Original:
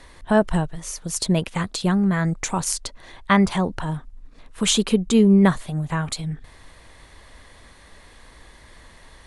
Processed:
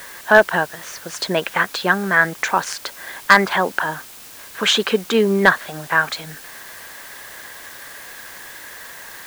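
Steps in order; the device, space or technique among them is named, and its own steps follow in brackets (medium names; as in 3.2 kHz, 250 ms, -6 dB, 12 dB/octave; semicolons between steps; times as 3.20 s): drive-through speaker (band-pass 460–3600 Hz; peaking EQ 1.6 kHz +11 dB 0.36 oct; hard clipper -10 dBFS, distortion -14 dB; white noise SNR 19 dB); trim +8 dB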